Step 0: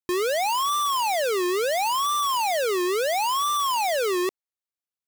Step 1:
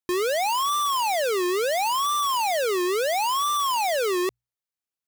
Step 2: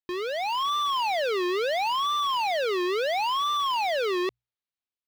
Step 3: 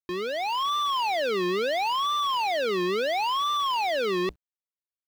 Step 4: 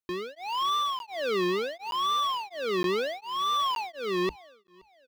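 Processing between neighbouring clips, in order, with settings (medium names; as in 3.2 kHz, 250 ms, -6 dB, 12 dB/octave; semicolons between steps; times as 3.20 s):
hum notches 60/120 Hz
level rider gain up to 4.5 dB; resonant high shelf 5.6 kHz -12.5 dB, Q 1.5; trim -7 dB
octave divider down 1 oct, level -5 dB; bit crusher 11-bit
feedback delay 524 ms, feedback 28%, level -23 dB; crackling interface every 0.92 s zero, from 0.99 s; tremolo of two beating tones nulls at 1.4 Hz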